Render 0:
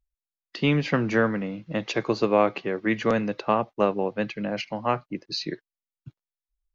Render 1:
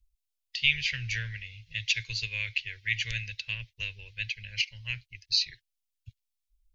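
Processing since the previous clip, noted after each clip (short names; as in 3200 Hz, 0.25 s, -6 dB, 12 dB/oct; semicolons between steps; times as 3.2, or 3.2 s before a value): dynamic EQ 2000 Hz, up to +4 dB, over -35 dBFS, Q 0.77; inverse Chebyshev band-stop 170–1300 Hz, stop band 40 dB; low shelf 87 Hz +7.5 dB; gain +4.5 dB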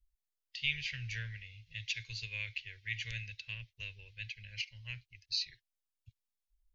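harmonic-percussive split percussive -5 dB; gain -5.5 dB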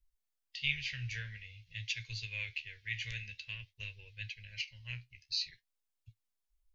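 flange 0.5 Hz, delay 7.9 ms, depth 9 ms, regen +50%; gain +4 dB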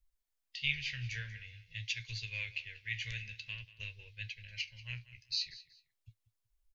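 feedback echo 0.187 s, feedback 25%, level -17.5 dB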